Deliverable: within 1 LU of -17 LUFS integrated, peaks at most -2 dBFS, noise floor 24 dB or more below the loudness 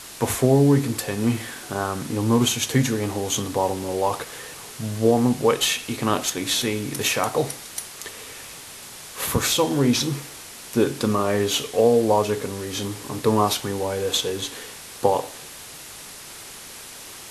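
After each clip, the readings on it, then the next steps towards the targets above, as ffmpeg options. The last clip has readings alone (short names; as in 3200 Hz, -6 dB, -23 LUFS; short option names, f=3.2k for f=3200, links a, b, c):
noise floor -40 dBFS; noise floor target -47 dBFS; loudness -22.5 LUFS; peak -3.5 dBFS; loudness target -17.0 LUFS
-> -af "afftdn=nr=7:nf=-40"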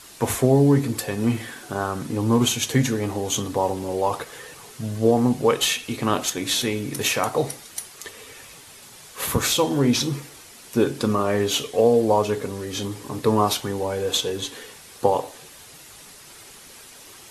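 noise floor -45 dBFS; noise floor target -47 dBFS
-> -af "afftdn=nr=6:nf=-45"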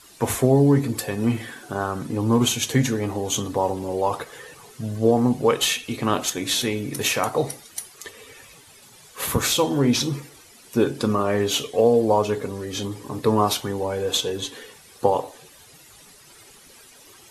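noise floor -49 dBFS; loudness -22.5 LUFS; peak -3.5 dBFS; loudness target -17.0 LUFS
-> -af "volume=5.5dB,alimiter=limit=-2dB:level=0:latency=1"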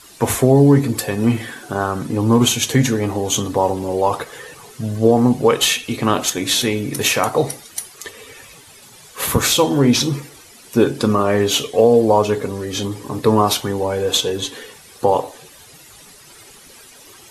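loudness -17.5 LUFS; peak -2.0 dBFS; noise floor -44 dBFS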